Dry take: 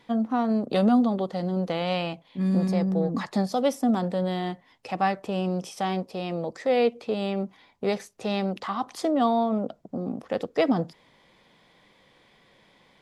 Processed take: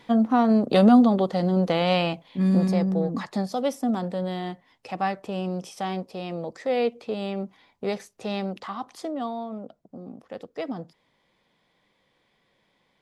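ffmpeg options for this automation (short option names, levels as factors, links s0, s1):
-af "volume=1.78,afade=t=out:st=2.08:d=1.21:silence=0.446684,afade=t=out:st=8.37:d=0.98:silence=0.421697"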